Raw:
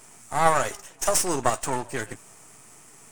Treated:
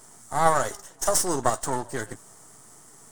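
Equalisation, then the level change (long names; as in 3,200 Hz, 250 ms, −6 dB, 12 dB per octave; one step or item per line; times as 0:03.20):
parametric band 2,500 Hz −14.5 dB 0.39 octaves
0.0 dB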